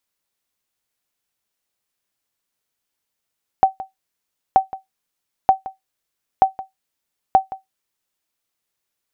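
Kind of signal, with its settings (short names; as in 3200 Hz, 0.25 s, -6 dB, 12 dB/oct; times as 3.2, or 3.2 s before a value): sonar ping 767 Hz, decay 0.15 s, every 0.93 s, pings 5, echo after 0.17 s, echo -17.5 dB -3 dBFS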